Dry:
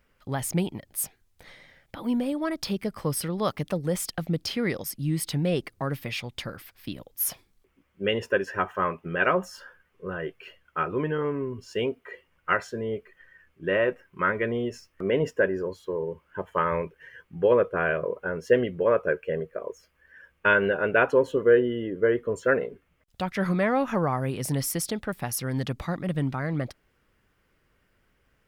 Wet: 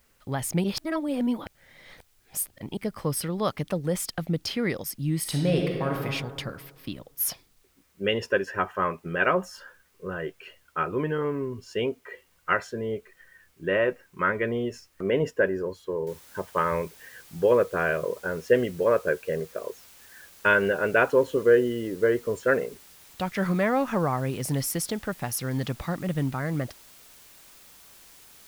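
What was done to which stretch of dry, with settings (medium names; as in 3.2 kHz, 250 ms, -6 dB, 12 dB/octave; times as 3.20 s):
0.64–2.77 s: reverse
5.19–6.00 s: reverb throw, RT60 1.8 s, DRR 0 dB
7.28–8.40 s: peaking EQ 5 kHz +6.5 dB 0.73 oct
16.07 s: noise floor step -68 dB -52 dB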